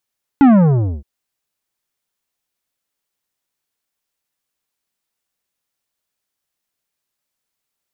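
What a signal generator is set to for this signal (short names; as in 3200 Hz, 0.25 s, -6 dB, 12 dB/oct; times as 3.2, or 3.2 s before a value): sub drop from 290 Hz, over 0.62 s, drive 11.5 dB, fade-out 0.58 s, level -6.5 dB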